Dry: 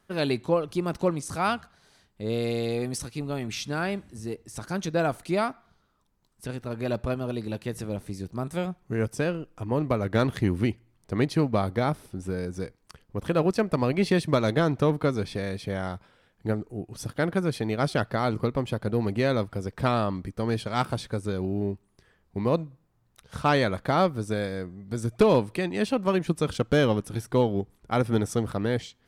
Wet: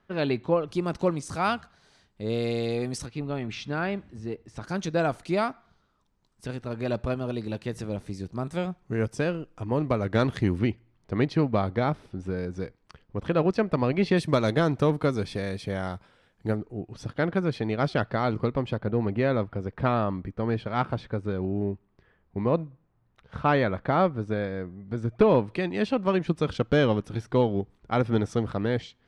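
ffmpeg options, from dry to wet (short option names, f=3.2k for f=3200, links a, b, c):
-af "asetnsamples=n=441:p=0,asendcmd='0.67 lowpass f 7500;3.06 lowpass f 3400;4.64 lowpass f 7100;10.59 lowpass f 4100;14.17 lowpass f 10000;16.56 lowpass f 4100;18.78 lowpass f 2500;25.48 lowpass f 4400',lowpass=3.3k"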